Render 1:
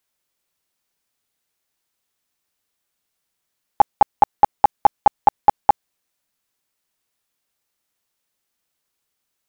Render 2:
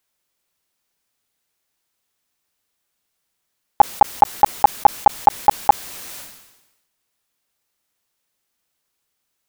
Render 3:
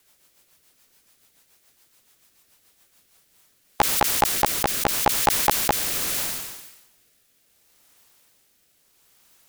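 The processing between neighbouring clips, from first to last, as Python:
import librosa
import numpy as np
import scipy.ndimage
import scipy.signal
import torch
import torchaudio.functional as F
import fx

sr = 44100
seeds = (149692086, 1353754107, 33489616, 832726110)

y1 = fx.sustainer(x, sr, db_per_s=57.0)
y1 = y1 * librosa.db_to_amplitude(2.0)
y2 = fx.high_shelf(y1, sr, hz=11000.0, db=4.0)
y2 = fx.rotary_switch(y2, sr, hz=7.0, then_hz=0.75, switch_at_s=2.82)
y2 = fx.spectral_comp(y2, sr, ratio=2.0)
y2 = y2 * librosa.db_to_amplitude(1.0)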